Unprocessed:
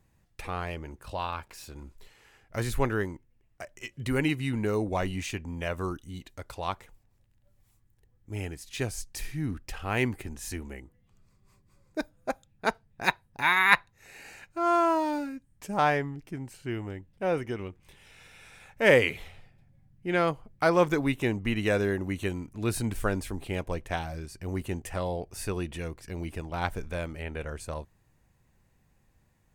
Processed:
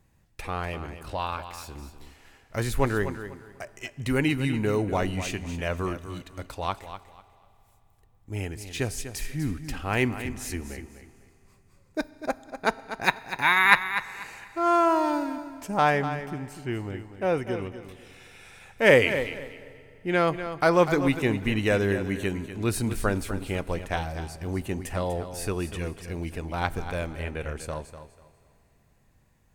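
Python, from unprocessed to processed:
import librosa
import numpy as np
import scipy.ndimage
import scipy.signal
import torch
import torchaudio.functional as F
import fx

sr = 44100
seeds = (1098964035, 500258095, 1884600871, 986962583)

p1 = x + fx.echo_feedback(x, sr, ms=246, feedback_pct=24, wet_db=-11.0, dry=0)
p2 = fx.rev_fdn(p1, sr, rt60_s=3.1, lf_ratio=0.7, hf_ratio=0.95, size_ms=22.0, drr_db=18.5)
y = p2 * 10.0 ** (2.5 / 20.0)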